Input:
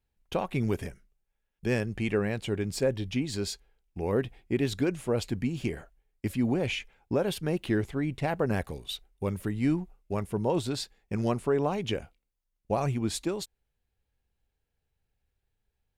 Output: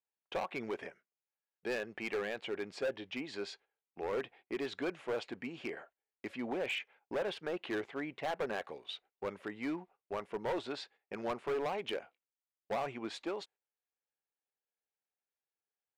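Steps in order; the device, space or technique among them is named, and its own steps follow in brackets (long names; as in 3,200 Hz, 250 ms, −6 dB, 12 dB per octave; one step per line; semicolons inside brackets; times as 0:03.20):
walkie-talkie (band-pass filter 520–2,600 Hz; hard clipping −31 dBFS, distortion −9 dB; noise gate −60 dBFS, range −10 dB)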